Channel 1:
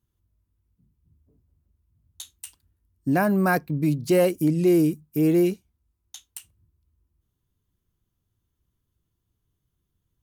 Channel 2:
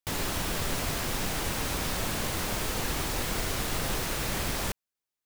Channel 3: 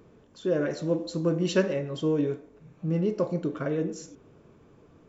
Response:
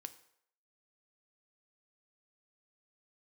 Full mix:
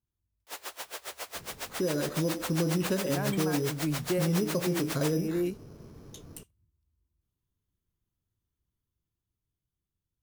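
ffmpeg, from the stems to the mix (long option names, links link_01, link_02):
-filter_complex "[0:a]volume=-11.5dB[link_01];[1:a]highpass=frequency=450:width=0.5412,highpass=frequency=450:width=1.3066,acrusher=bits=3:mode=log:mix=0:aa=0.000001,aeval=exprs='val(0)*pow(10,-25*(0.5-0.5*cos(2*PI*7.3*n/s))/20)':channel_layout=same,adelay=400,volume=-3dB[link_02];[2:a]lowshelf=frequency=170:gain=10,acrusher=samples=8:mix=1:aa=0.000001,adelay=1350,volume=-1.5dB[link_03];[link_01][link_03]amix=inputs=2:normalize=0,alimiter=level_in=0.5dB:limit=-24dB:level=0:latency=1:release=375,volume=-0.5dB,volume=0dB[link_04];[link_02][link_04]amix=inputs=2:normalize=0,dynaudnorm=framelen=400:gausssize=9:maxgain=4dB"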